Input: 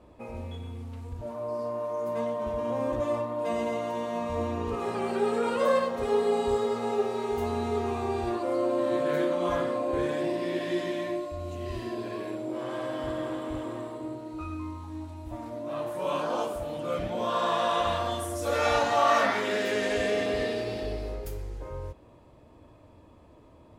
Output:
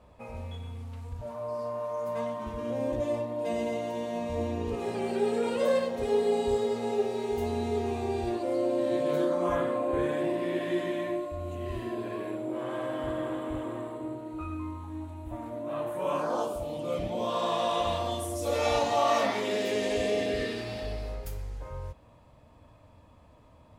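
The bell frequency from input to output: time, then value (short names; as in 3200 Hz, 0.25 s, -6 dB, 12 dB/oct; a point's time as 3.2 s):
bell -12 dB 0.66 oct
2.2 s 320 Hz
2.83 s 1200 Hz
8.99 s 1200 Hz
9.61 s 5100 Hz
15.99 s 5100 Hz
16.67 s 1500 Hz
20.18 s 1500 Hz
20.77 s 360 Hz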